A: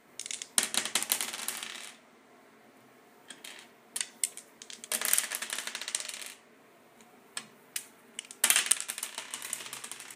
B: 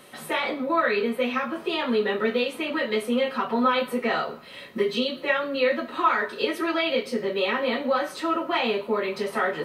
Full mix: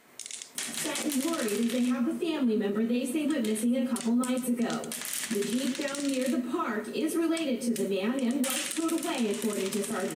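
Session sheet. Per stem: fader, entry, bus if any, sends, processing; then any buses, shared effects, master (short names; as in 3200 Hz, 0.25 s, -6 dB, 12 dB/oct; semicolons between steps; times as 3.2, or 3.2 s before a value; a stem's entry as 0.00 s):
+0.5 dB, 0.00 s, no send, no echo send, hard clip -13 dBFS, distortion -12 dB
-2.0 dB, 0.55 s, no send, echo send -14.5 dB, graphic EQ 250/500/1000/2000/4000/8000 Hz +11/-4/-9/-9/-12/+8 dB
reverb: off
echo: echo 0.13 s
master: high shelf 2100 Hz +5.5 dB; limiter -20.5 dBFS, peak gain reduction 16 dB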